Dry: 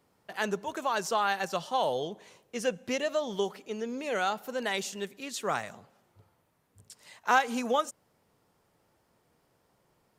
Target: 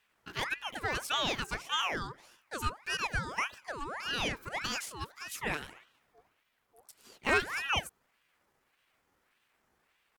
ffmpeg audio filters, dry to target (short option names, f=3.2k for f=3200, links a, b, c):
-af "asetrate=55563,aresample=44100,atempo=0.793701,aeval=exprs='val(0)*sin(2*PI*1400*n/s+1400*0.6/1.7*sin(2*PI*1.7*n/s))':c=same,volume=-1dB"